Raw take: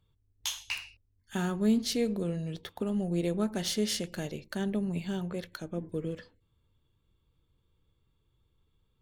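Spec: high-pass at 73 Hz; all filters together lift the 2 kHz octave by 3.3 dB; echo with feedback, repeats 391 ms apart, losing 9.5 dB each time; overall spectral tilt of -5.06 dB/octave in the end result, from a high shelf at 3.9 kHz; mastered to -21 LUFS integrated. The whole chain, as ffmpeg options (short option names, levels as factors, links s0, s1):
-af "highpass=73,equalizer=f=2000:t=o:g=5.5,highshelf=f=3900:g=-3.5,aecho=1:1:391|782|1173|1564:0.335|0.111|0.0365|0.012,volume=3.55"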